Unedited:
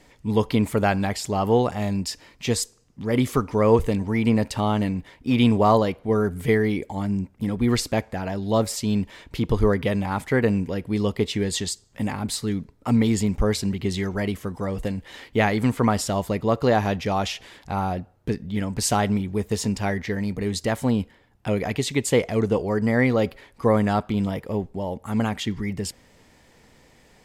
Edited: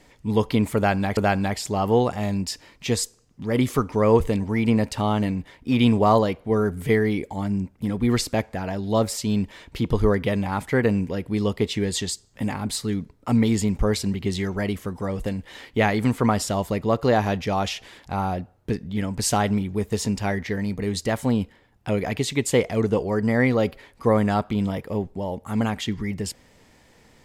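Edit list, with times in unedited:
0.76–1.17 loop, 2 plays

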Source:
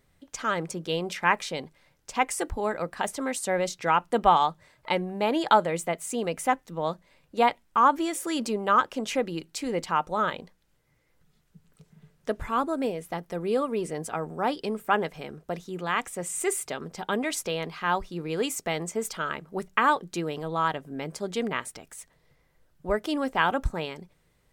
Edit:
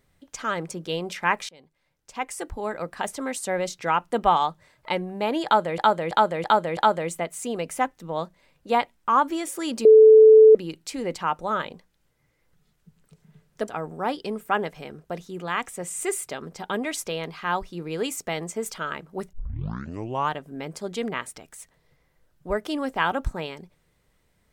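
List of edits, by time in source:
1.49–2.93 fade in, from -23 dB
5.45–5.78 loop, 5 plays
8.53–9.23 bleep 437 Hz -7.5 dBFS
12.36–14.07 cut
19.72 tape start 1.02 s

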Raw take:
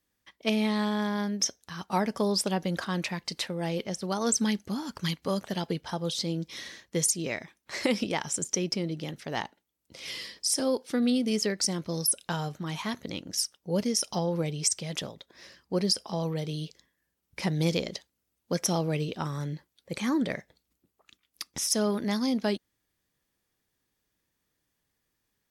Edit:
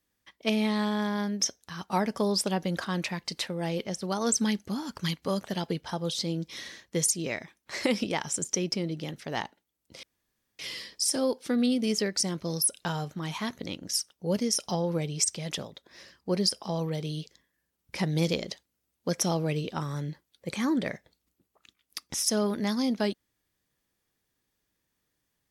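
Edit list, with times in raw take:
10.03 insert room tone 0.56 s

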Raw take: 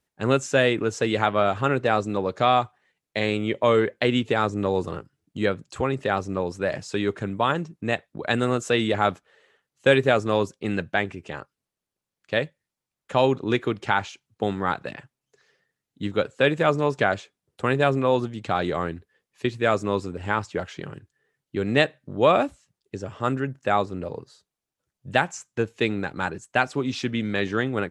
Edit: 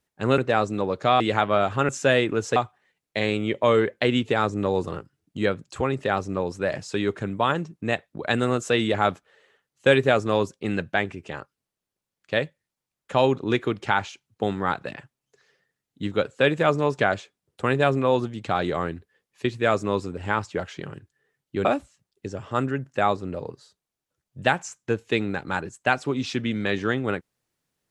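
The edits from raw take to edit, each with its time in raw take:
0.38–1.05 swap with 1.74–2.56
21.65–22.34 cut

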